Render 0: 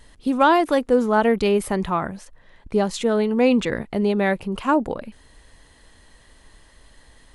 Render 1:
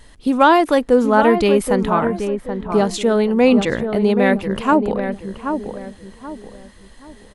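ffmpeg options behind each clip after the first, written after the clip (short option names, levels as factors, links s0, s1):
-filter_complex "[0:a]asplit=2[s0][s1];[s1]adelay=779,lowpass=f=1300:p=1,volume=0.473,asplit=2[s2][s3];[s3]adelay=779,lowpass=f=1300:p=1,volume=0.35,asplit=2[s4][s5];[s5]adelay=779,lowpass=f=1300:p=1,volume=0.35,asplit=2[s6][s7];[s7]adelay=779,lowpass=f=1300:p=1,volume=0.35[s8];[s0][s2][s4][s6][s8]amix=inputs=5:normalize=0,volume=1.58"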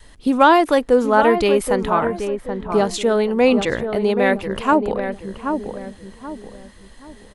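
-af "adynamicequalizer=threshold=0.0282:dfrequency=200:dqfactor=1.4:tfrequency=200:tqfactor=1.4:attack=5:release=100:ratio=0.375:range=3:mode=cutabove:tftype=bell"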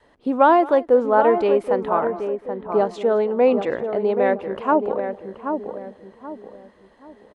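-af "bandpass=f=590:t=q:w=0.84:csg=0,aecho=1:1:217:0.0944"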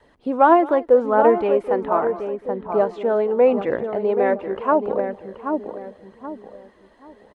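-filter_complex "[0:a]acrossover=split=2900[s0][s1];[s1]acompressor=threshold=0.00112:ratio=4:attack=1:release=60[s2];[s0][s2]amix=inputs=2:normalize=0,aphaser=in_gain=1:out_gain=1:delay=3.5:decay=0.32:speed=0.8:type=triangular"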